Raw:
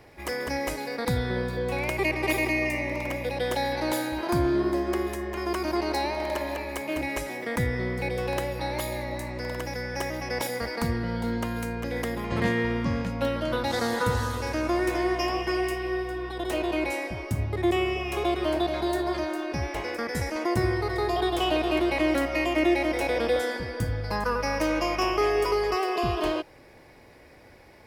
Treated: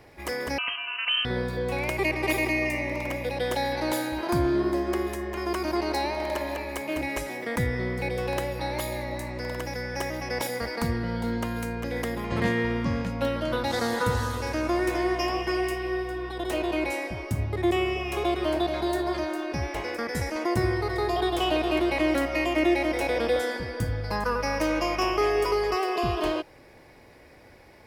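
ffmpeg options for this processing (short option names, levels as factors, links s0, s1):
-filter_complex "[0:a]asettb=1/sr,asplit=3[s0][s1][s2];[s0]atrim=end=0.584[s3];[s1]atrim=start=0.58:end=1.25,asetpts=PTS-STARTPTS,afade=t=in:d=0.004:c=qsin,afade=t=out:st=0.666:d=0.004:c=qsin,lowpass=f=2700:t=q:w=0.5098,lowpass=f=2700:t=q:w=0.6013,lowpass=f=2700:t=q:w=0.9,lowpass=f=2700:t=q:w=2.563,afreqshift=-3200[s4];[s2]atrim=start=1.246[s5];[s3][s4]acrossfade=d=0.004:c1=hsin:c2=qsin[s6];[s6][s5]acrossfade=d=0.004:c1=qsin:c2=hsin"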